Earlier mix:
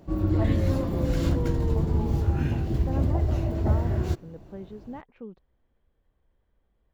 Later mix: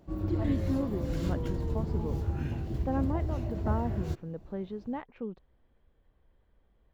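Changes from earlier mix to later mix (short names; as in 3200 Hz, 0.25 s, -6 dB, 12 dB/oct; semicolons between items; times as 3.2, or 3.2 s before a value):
speech +3.5 dB; background -7.5 dB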